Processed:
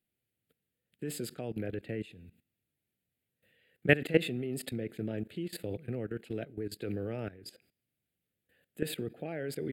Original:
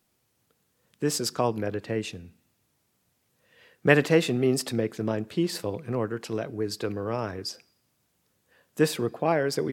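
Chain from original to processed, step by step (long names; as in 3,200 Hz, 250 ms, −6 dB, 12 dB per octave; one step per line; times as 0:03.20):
output level in coarse steps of 17 dB
phaser with its sweep stopped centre 2,500 Hz, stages 4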